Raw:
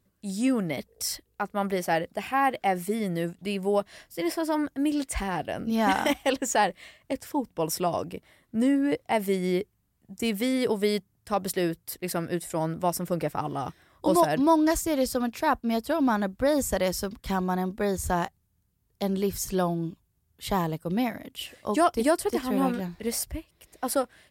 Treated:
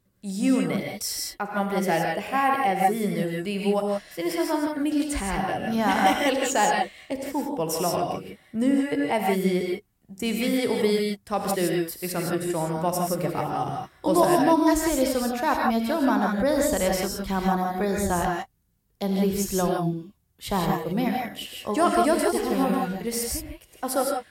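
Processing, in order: gated-style reverb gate 190 ms rising, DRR -0.5 dB

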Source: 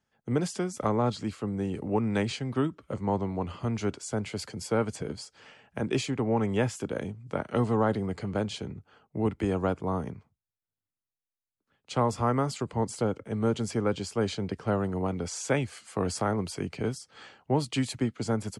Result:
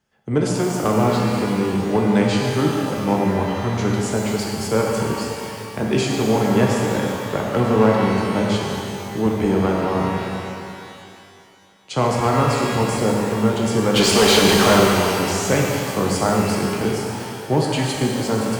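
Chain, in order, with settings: 13.94–14.80 s: overdrive pedal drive 32 dB, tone 4.7 kHz, clips at -15.5 dBFS; one-sided clip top -20 dBFS; pitch-shifted reverb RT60 2.5 s, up +12 st, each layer -8 dB, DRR -1.5 dB; trim +6 dB

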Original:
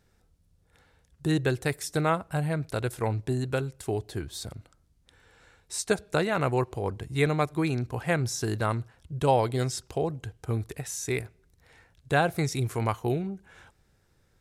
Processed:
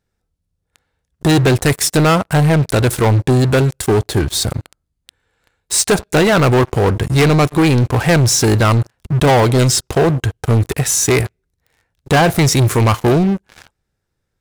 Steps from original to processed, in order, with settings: waveshaping leveller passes 5; 4.50–5.76 s: band-stop 5.6 kHz, Q 11; trim +2.5 dB

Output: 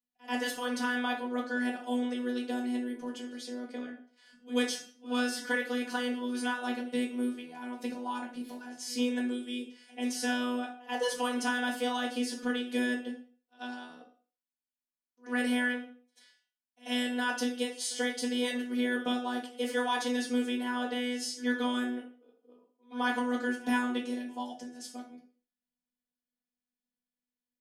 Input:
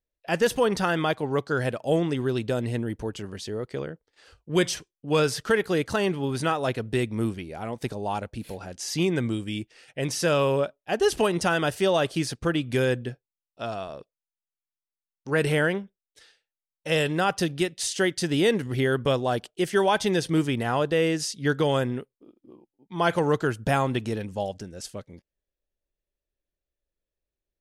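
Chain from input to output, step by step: frequency shift +110 Hz; robot voice 246 Hz; pre-echo 88 ms -22 dB; on a send at -1 dB: reverberation RT60 0.40 s, pre-delay 4 ms; on the sum: trim -6.5 dB

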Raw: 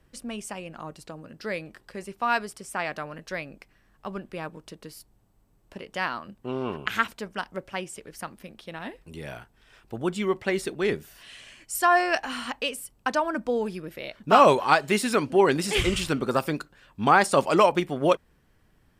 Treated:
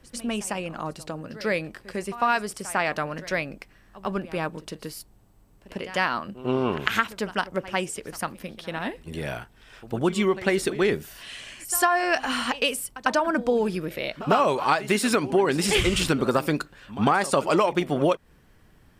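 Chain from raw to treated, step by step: compression 8:1, threshold -24 dBFS, peak gain reduction 13 dB; reverse echo 100 ms -16.5 dB; trim +6.5 dB

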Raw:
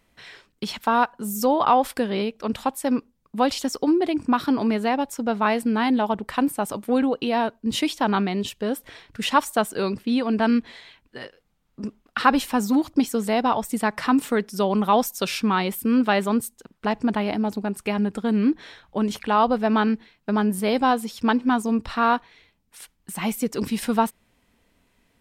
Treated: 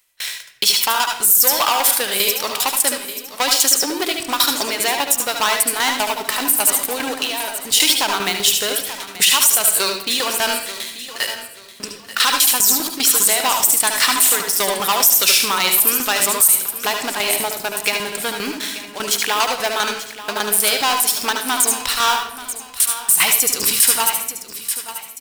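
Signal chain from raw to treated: tremolo saw down 5 Hz, depth 85%; peaking EQ 220 Hz -12 dB 0.36 oct; in parallel at 0 dB: compression, threshold -31 dBFS, peak gain reduction 15.5 dB; on the sum: waveshaping leveller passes 3; 7.17–7.69 s: level held to a coarse grid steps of 21 dB; pre-emphasis filter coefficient 0.97; feedback delay 884 ms, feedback 31%, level -14.5 dB; on a send at -4 dB: reverberation, pre-delay 71 ms; on the sum: loudness maximiser +13 dB; trim -1 dB

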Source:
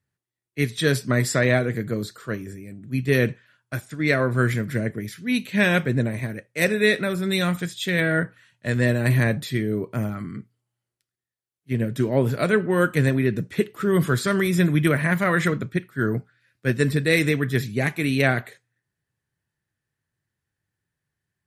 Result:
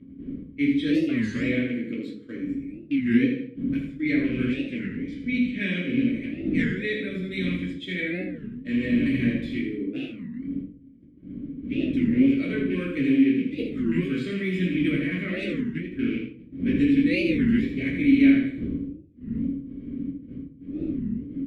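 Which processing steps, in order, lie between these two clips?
rattle on loud lows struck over -23 dBFS, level -21 dBFS; wind noise 110 Hz -23 dBFS; upward compressor, threshold -21 dBFS; small resonant body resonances 480/1100 Hz, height 15 dB, ringing for 90 ms; 4.44–6.99 s: low-pass 9.1 kHz 24 dB/octave; feedback delay 80 ms, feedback 38%, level -6.5 dB; gate -25 dBFS, range -17 dB; vowel filter i; simulated room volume 340 m³, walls furnished, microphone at 2.8 m; warped record 33 1/3 rpm, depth 250 cents

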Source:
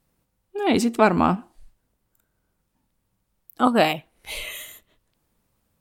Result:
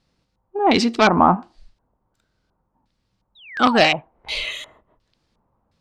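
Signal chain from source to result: dynamic bell 2 kHz, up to +7 dB, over -34 dBFS, Q 0.85; Chebyshev shaper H 5 -14 dB, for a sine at -1.5 dBFS; painted sound fall, 3.35–3.87 s, 520–4000 Hz -23 dBFS; LFO low-pass square 1.4 Hz 950–4700 Hz; trim -3.5 dB

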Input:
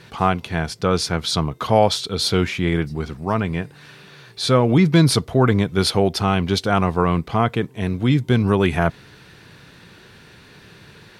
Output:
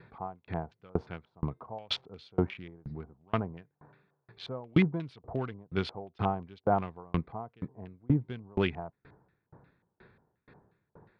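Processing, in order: local Wiener filter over 15 samples; LFO low-pass square 2.8 Hz 850–2900 Hz; sawtooth tremolo in dB decaying 2.1 Hz, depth 35 dB; trim -6 dB

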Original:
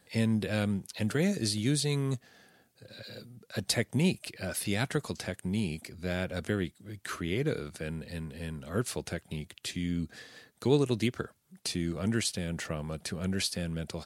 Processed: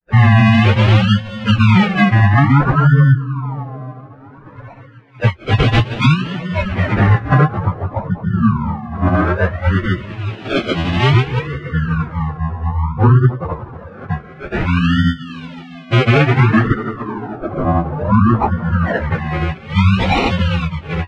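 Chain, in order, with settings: expander on every frequency bin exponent 2; peaking EQ 120 Hz +13 dB 1.6 oct; tape echo 112 ms, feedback 85%, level -17 dB, low-pass 5.8 kHz; dynamic bell 1.9 kHz, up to +5 dB, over -52 dBFS, Q 1; in parallel at 0 dB: compression 8:1, threshold -38 dBFS, peak gain reduction 22 dB; on the sum: granulator; spectral gate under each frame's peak -25 dB strong; decimation with a swept rate 38×, swing 60% 0.87 Hz; plain phase-vocoder stretch 1.5×; LFO low-pass sine 0.21 Hz 950–3100 Hz; loudness maximiser +22 dB; trim -1.5 dB

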